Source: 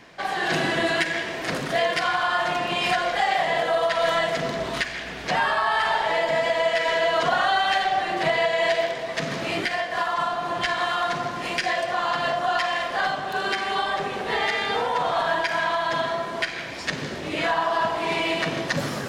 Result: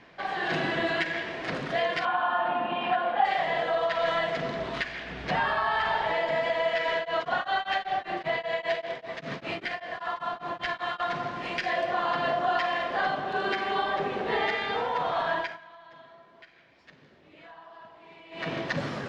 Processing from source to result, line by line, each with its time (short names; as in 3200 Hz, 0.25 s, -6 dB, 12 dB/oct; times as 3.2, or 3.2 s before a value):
2.05–3.25 speaker cabinet 140–3000 Hz, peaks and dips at 160 Hz -6 dB, 240 Hz +9 dB, 390 Hz -4 dB, 840 Hz +8 dB, 2100 Hz -10 dB
5.1–6.13 bell 77 Hz +7 dB 2.9 oct
6.96–11 beating tremolo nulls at 5.1 Hz
11.72–14.55 bell 330 Hz +5 dB 2.2 oct
15.38–18.51 dip -21 dB, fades 0.20 s
whole clip: LPF 3800 Hz 12 dB/oct; gain -4.5 dB